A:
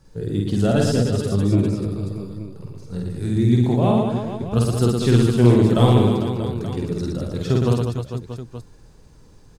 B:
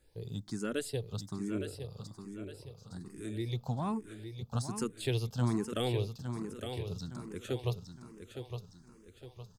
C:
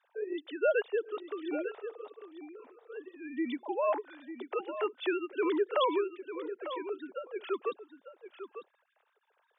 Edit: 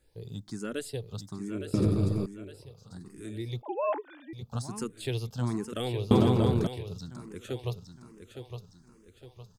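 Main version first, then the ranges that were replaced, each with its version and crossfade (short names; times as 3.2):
B
1.74–2.26 from A
3.62–4.33 from C
6.11–6.67 from A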